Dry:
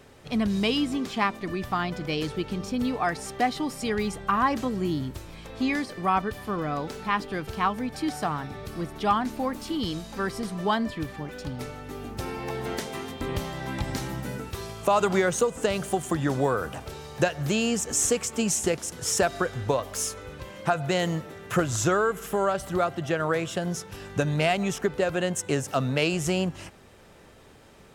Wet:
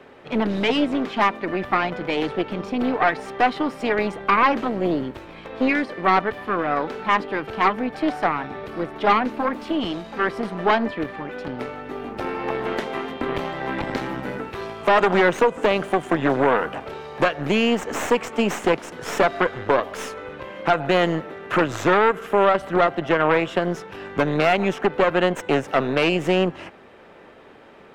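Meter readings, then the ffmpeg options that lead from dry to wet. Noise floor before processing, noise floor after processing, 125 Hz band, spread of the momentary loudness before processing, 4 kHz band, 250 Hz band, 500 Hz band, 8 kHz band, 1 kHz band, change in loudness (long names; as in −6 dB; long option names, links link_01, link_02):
−52 dBFS, −46 dBFS, −1.0 dB, 11 LU, +3.0 dB, +4.0 dB, +6.5 dB, −11.0 dB, +7.0 dB, +5.5 dB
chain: -filter_complex "[0:a]aeval=exprs='0.335*(cos(1*acos(clip(val(0)/0.335,-1,1)))-cos(1*PI/2))+0.0531*(cos(5*acos(clip(val(0)/0.335,-1,1)))-cos(5*PI/2))+0.106*(cos(6*acos(clip(val(0)/0.335,-1,1)))-cos(6*PI/2))':channel_layout=same,acrossover=split=210 3200:gain=0.178 1 0.0891[link_01][link_02][link_03];[link_01][link_02][link_03]amix=inputs=3:normalize=0,volume=2.5dB"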